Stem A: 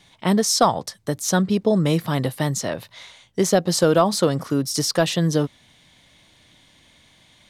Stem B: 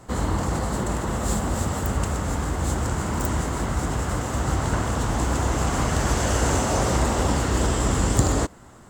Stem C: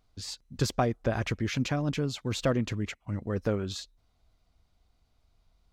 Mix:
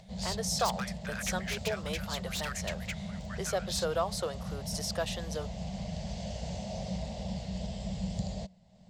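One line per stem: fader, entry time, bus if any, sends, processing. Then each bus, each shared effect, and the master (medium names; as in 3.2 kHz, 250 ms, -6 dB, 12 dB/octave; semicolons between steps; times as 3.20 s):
-12.5 dB, 0.00 s, no send, inverse Chebyshev high-pass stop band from 220 Hz, stop band 40 dB
-16.5 dB, 0.00 s, no send, FFT filter 130 Hz 0 dB, 190 Hz +14 dB, 300 Hz -24 dB, 630 Hz +6 dB, 1.3 kHz -23 dB, 2.1 kHz -3 dB, 4.6 kHz +6 dB, 11 kHz -22 dB; upward compressor, threshold -32 dBFS
+1.0 dB, 0.00 s, no send, inverse Chebyshev high-pass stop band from 510 Hz, stop band 50 dB; wavefolder -31 dBFS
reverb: none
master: none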